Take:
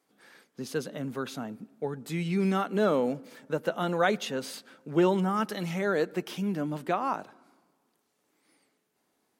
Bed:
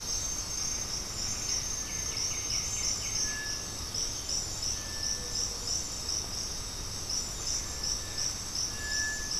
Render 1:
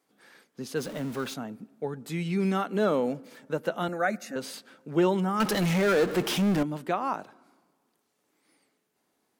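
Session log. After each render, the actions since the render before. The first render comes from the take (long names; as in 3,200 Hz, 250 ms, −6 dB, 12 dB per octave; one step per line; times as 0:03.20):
0:00.77–0:01.34: converter with a step at zero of −38.5 dBFS
0:03.88–0:04.36: phaser with its sweep stopped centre 650 Hz, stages 8
0:05.40–0:06.63: power curve on the samples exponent 0.5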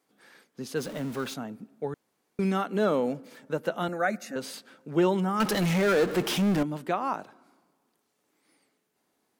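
0:01.94–0:02.39: fill with room tone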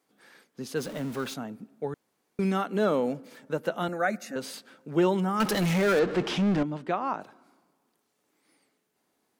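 0:05.99–0:07.21: high-frequency loss of the air 100 metres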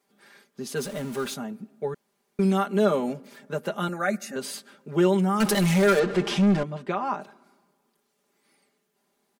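dynamic equaliser 9,400 Hz, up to +6 dB, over −56 dBFS, Q 1.1
comb filter 5 ms, depth 78%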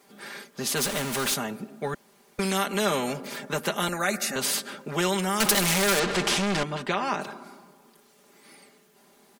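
every bin compressed towards the loudest bin 2 to 1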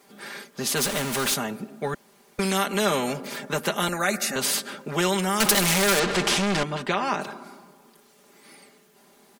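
level +2 dB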